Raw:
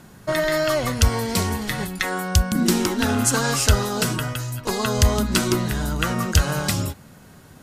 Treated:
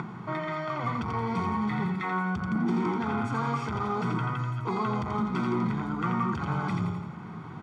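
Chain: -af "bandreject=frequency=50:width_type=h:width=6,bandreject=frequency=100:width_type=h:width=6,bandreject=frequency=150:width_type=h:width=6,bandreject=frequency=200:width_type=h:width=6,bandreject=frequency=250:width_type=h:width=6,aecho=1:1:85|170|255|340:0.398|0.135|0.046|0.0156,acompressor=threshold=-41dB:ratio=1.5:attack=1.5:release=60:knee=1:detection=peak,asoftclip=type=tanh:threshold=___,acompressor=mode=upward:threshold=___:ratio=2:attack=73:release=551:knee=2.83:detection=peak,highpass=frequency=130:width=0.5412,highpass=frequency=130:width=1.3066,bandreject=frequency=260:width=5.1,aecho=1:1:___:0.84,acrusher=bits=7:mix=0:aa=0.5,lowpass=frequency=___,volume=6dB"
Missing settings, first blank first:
-29dB, -45dB, 0.9, 1500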